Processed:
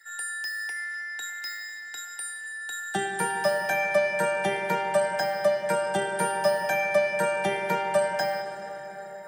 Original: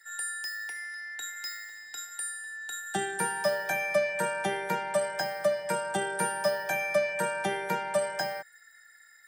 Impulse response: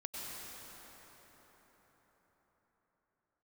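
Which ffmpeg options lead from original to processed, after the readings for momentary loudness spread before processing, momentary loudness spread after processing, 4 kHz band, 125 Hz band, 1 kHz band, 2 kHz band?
9 LU, 11 LU, +2.0 dB, +3.5 dB, +4.5 dB, +3.5 dB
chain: -filter_complex "[0:a]asplit=2[link_01][link_02];[1:a]atrim=start_sample=2205,lowpass=6500[link_03];[link_02][link_03]afir=irnorm=-1:irlink=0,volume=-4.5dB[link_04];[link_01][link_04]amix=inputs=2:normalize=0"

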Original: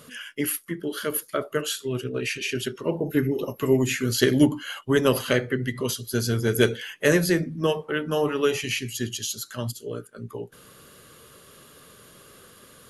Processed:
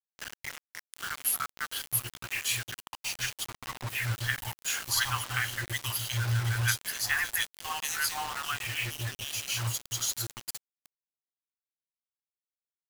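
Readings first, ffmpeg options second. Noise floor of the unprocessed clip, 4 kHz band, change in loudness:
−51 dBFS, −2.0 dB, −6.0 dB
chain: -filter_complex "[0:a]afftfilt=real='re*(1-between(b*sr/4096,120,710))':imag='im*(1-between(b*sr/4096,120,710))':win_size=4096:overlap=0.75,acrossover=split=880|2800[link_01][link_02][link_03];[link_02]adelay=60[link_04];[link_03]adelay=790[link_05];[link_01][link_04][link_05]amix=inputs=3:normalize=0,acrusher=bits=5:mix=0:aa=0.000001"

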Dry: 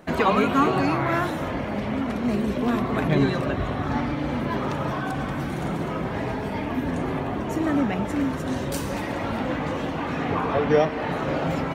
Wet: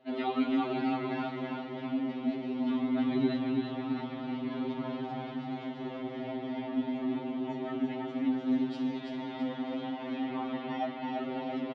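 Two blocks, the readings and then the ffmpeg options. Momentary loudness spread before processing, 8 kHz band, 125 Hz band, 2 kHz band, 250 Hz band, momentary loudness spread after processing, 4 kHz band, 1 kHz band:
7 LU, below −25 dB, −17.0 dB, −14.0 dB, −5.5 dB, 8 LU, −8.5 dB, −11.5 dB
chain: -af "highpass=260,equalizer=frequency=260:width_type=q:width=4:gain=6,equalizer=frequency=520:width_type=q:width=4:gain=-6,equalizer=frequency=1100:width_type=q:width=4:gain=-9,equalizer=frequency=1600:width_type=q:width=4:gain=-10,equalizer=frequency=2400:width_type=q:width=4:gain=-4,equalizer=frequency=3400:width_type=q:width=4:gain=4,lowpass=frequency=3900:width=0.5412,lowpass=frequency=3900:width=1.3066,aecho=1:1:333|666|999|1332|1665|1998:0.631|0.303|0.145|0.0698|0.0335|0.0161,afftfilt=real='re*2.45*eq(mod(b,6),0)':imag='im*2.45*eq(mod(b,6),0)':win_size=2048:overlap=0.75,volume=-7.5dB"

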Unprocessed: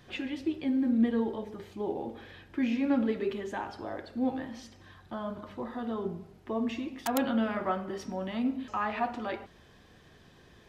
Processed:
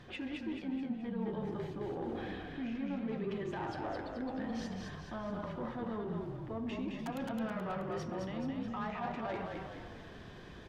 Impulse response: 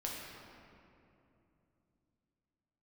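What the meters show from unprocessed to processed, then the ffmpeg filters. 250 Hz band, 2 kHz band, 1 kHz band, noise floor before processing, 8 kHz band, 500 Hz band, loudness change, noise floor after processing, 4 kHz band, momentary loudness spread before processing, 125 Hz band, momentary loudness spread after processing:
−7.5 dB, −5.5 dB, −6.0 dB, −58 dBFS, −10.0 dB, −5.5 dB, −7.0 dB, −50 dBFS, −5.5 dB, 13 LU, +2.5 dB, 5 LU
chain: -filter_complex "[0:a]aemphasis=mode=reproduction:type=50kf,areverse,acompressor=threshold=-41dB:ratio=6,areverse,asoftclip=type=tanh:threshold=-37.5dB,asplit=8[link_01][link_02][link_03][link_04][link_05][link_06][link_07][link_08];[link_02]adelay=214,afreqshift=-37,volume=-3.5dB[link_09];[link_03]adelay=428,afreqshift=-74,volume=-9.3dB[link_10];[link_04]adelay=642,afreqshift=-111,volume=-15.2dB[link_11];[link_05]adelay=856,afreqshift=-148,volume=-21dB[link_12];[link_06]adelay=1070,afreqshift=-185,volume=-26.9dB[link_13];[link_07]adelay=1284,afreqshift=-222,volume=-32.7dB[link_14];[link_08]adelay=1498,afreqshift=-259,volume=-38.6dB[link_15];[link_01][link_09][link_10][link_11][link_12][link_13][link_14][link_15]amix=inputs=8:normalize=0,volume=5dB"

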